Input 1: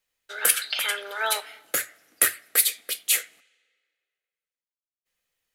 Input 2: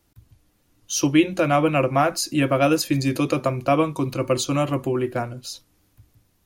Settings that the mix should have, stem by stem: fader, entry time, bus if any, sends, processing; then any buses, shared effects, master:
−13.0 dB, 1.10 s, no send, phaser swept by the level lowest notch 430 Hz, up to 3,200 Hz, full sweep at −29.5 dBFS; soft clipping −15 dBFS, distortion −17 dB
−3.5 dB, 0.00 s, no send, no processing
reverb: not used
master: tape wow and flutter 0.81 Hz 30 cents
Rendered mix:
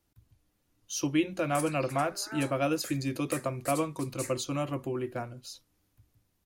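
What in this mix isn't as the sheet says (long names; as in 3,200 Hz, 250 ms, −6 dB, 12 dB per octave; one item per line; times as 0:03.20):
stem 2 −3.5 dB → −10.0 dB
master: missing tape wow and flutter 0.81 Hz 30 cents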